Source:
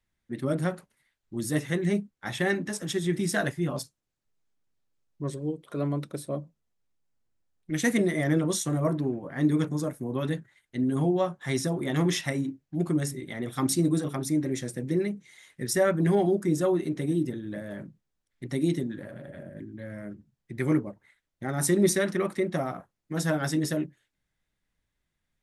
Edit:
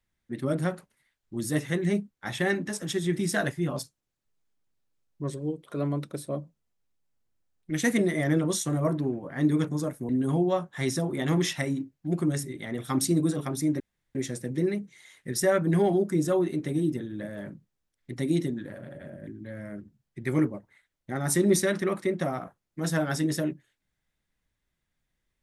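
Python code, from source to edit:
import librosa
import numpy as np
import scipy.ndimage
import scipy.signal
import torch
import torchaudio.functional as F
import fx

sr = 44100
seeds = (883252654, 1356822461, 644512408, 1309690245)

y = fx.edit(x, sr, fx.cut(start_s=10.09, length_s=0.68),
    fx.insert_room_tone(at_s=14.48, length_s=0.35), tone=tone)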